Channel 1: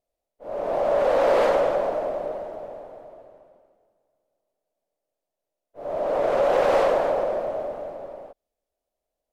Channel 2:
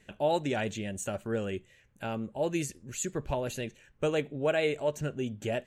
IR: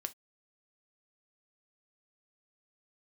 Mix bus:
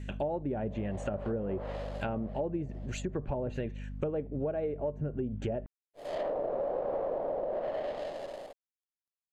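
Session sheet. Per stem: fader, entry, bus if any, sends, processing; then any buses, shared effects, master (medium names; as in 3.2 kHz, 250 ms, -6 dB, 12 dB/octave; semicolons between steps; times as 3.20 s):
-3.5 dB, 0.20 s, no send, dead-time distortion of 0.16 ms; word length cut 12-bit, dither none; band-stop 5.7 kHz, Q 8.3; auto duck -16 dB, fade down 0.95 s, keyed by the second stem
+3.0 dB, 0.00 s, send -13 dB, hum 50 Hz, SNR 12 dB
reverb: on, pre-delay 3 ms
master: low-pass that closes with the level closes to 730 Hz, closed at -24 dBFS; compression, threshold -30 dBFS, peak gain reduction 10 dB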